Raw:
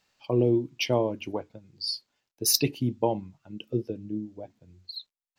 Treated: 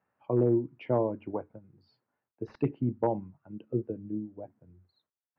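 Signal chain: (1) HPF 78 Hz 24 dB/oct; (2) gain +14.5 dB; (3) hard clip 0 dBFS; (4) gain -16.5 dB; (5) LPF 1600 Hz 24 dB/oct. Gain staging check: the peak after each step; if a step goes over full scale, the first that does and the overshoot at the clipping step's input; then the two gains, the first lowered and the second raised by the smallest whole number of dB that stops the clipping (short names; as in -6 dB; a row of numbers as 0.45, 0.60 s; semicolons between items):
-7.5, +7.0, 0.0, -16.5, -16.0 dBFS; step 2, 7.0 dB; step 2 +7.5 dB, step 4 -9.5 dB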